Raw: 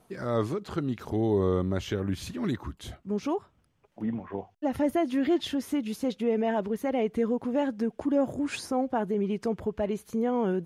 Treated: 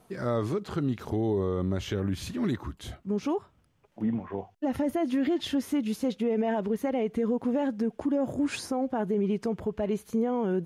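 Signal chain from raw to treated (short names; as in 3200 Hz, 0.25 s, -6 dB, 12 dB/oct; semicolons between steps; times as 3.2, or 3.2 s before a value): harmonic-percussive split percussive -4 dB; limiter -23.5 dBFS, peak gain reduction 7.5 dB; gain +3.5 dB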